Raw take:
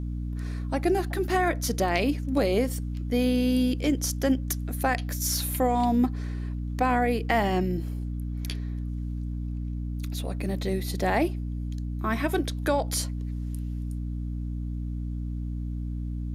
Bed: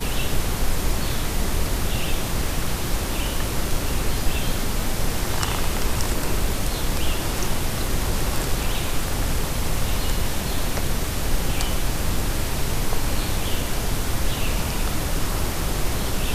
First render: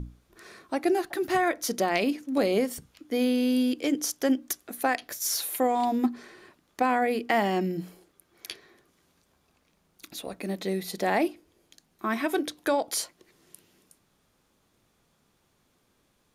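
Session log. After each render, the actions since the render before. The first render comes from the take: hum notches 60/120/180/240/300 Hz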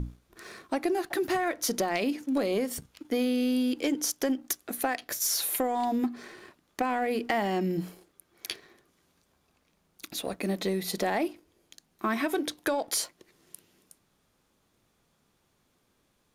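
compression 5:1, threshold -28 dBFS, peak gain reduction 8.5 dB; waveshaping leveller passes 1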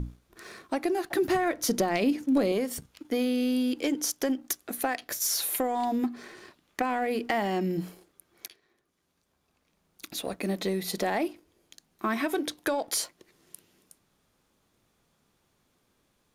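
1.12–2.52 s: bass shelf 330 Hz +7.5 dB; 6.35–6.81 s: peaking EQ 7.3 kHz -> 1.8 kHz +6.5 dB; 8.48–10.06 s: fade in, from -20.5 dB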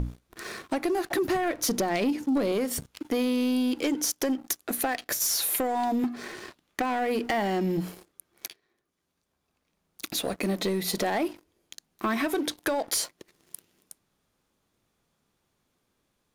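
compression 2:1, threshold -34 dBFS, peak gain reduction 8 dB; waveshaping leveller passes 2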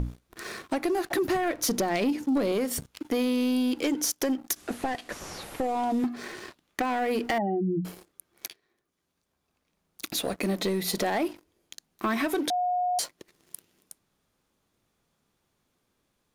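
4.56–6.05 s: one-bit delta coder 64 kbps, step -47 dBFS; 7.38–7.85 s: spectral contrast enhancement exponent 2.6; 12.50–12.99 s: bleep 721 Hz -23.5 dBFS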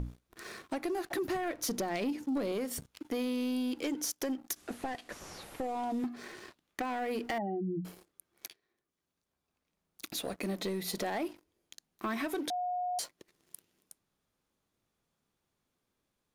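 trim -7.5 dB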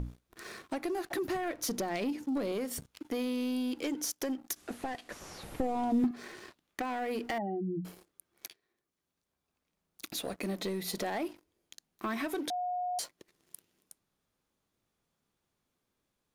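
5.43–6.11 s: bass shelf 320 Hz +11 dB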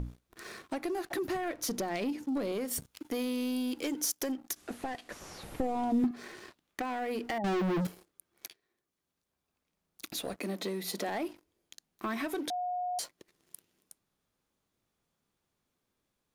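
2.68–4.32 s: treble shelf 6.4 kHz +6.5 dB; 7.44–7.87 s: waveshaping leveller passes 5; 10.38–11.09 s: steep high-pass 180 Hz

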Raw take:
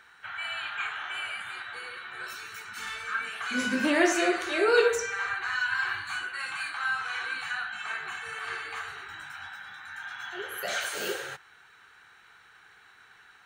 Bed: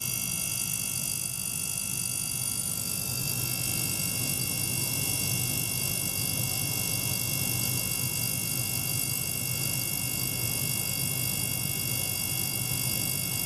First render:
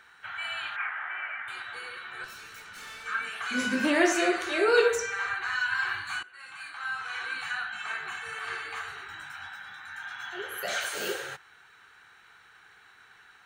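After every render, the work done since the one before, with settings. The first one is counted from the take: 0.76–1.48 s: cabinet simulation 290–2100 Hz, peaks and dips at 290 Hz -5 dB, 460 Hz -9 dB, 2 kHz +8 dB; 2.24–3.06 s: valve stage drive 40 dB, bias 0.6; 6.23–7.44 s: fade in, from -18.5 dB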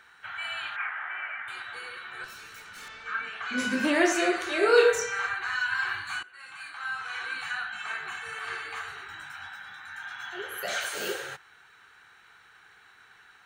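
2.88–3.58 s: distance through air 120 m; 4.60–5.27 s: doubling 27 ms -2.5 dB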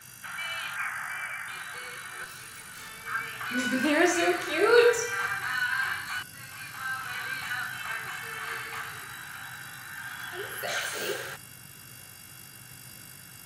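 add bed -18 dB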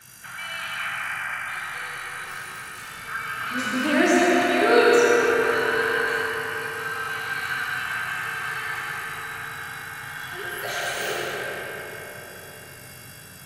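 bucket-brigade echo 204 ms, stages 4096, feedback 72%, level -7.5 dB; algorithmic reverb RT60 3.8 s, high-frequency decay 0.5×, pre-delay 40 ms, DRR -2.5 dB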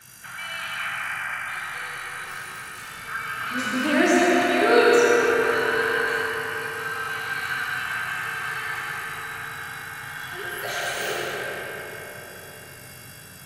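no audible change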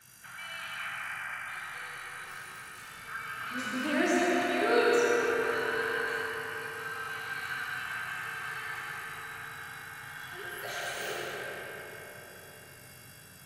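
trim -8.5 dB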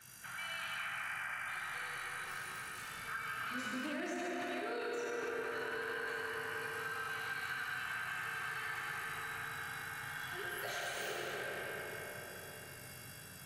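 peak limiter -24 dBFS, peak gain reduction 10 dB; compression 4:1, threshold -38 dBFS, peak gain reduction 8 dB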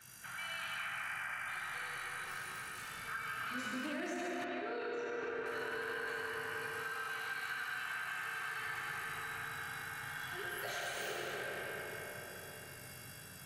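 4.44–5.46 s: distance through air 150 m; 6.83–8.59 s: bass shelf 160 Hz -10.5 dB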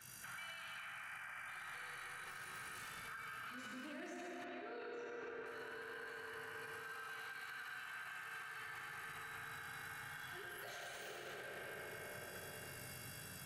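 compression, threshold -44 dBFS, peak gain reduction 7.5 dB; peak limiter -41 dBFS, peak gain reduction 5.5 dB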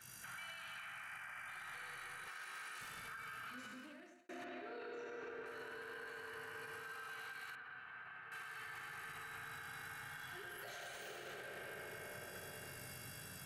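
2.28–2.81 s: frequency weighting A; 3.54–4.29 s: fade out; 7.55–8.32 s: distance through air 460 m

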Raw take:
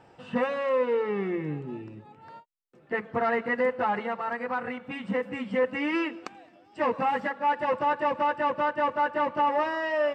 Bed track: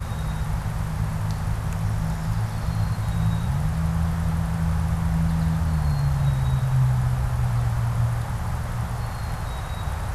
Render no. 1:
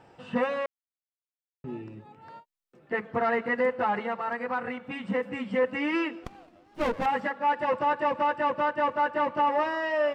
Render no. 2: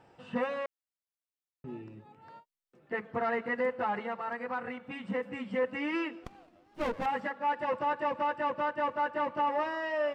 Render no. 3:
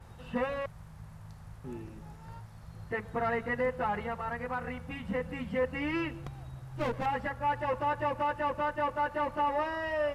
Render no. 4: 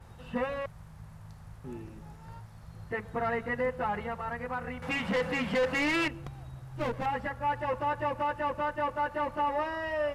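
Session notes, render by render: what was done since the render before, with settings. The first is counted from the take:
0.66–1.64 s: mute; 6.24–7.06 s: sliding maximum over 17 samples
trim -5 dB
add bed track -22.5 dB
4.82–6.08 s: overdrive pedal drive 23 dB, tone 3.5 kHz, clips at -20.5 dBFS

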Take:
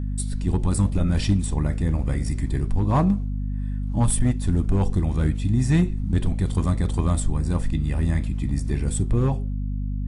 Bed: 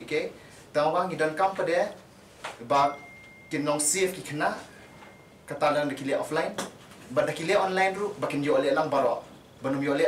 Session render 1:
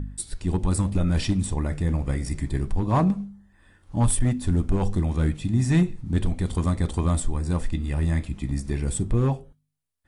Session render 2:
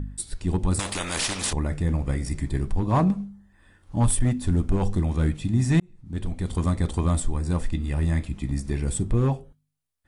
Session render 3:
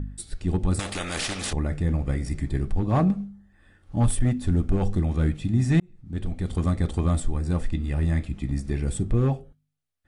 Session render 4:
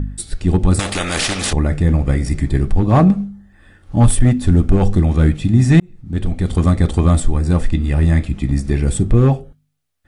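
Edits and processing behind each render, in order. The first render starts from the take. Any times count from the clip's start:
de-hum 50 Hz, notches 5
0.79–1.53 s: spectrum-flattening compressor 4:1; 5.80–6.64 s: fade in
treble shelf 5.5 kHz -7.5 dB; band-stop 980 Hz, Q 5.7
trim +10 dB; peak limiter -2 dBFS, peak gain reduction 0.5 dB

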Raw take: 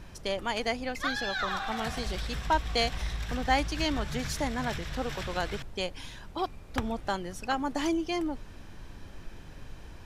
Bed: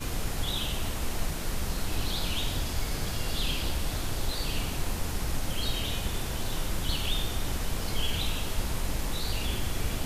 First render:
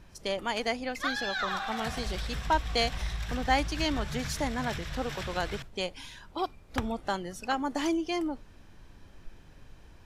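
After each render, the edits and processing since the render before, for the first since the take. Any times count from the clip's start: noise print and reduce 7 dB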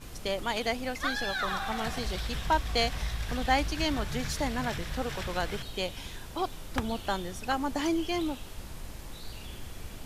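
add bed -12 dB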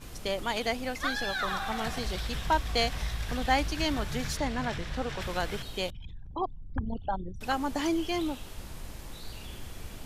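4.37–5.21 s: distance through air 51 m; 5.90–7.41 s: resonances exaggerated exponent 3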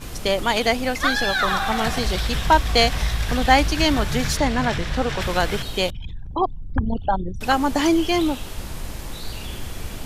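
trim +10.5 dB

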